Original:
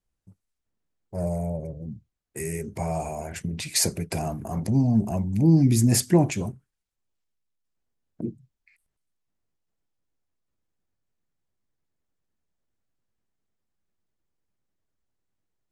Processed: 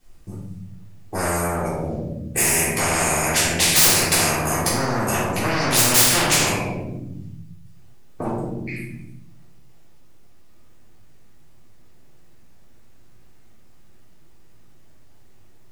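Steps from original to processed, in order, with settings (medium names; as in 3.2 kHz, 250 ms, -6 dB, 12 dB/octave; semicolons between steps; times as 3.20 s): saturation -24 dBFS, distortion -6 dB; simulated room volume 210 m³, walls mixed, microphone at 3.6 m; spectrum-flattening compressor 4:1; trim -1 dB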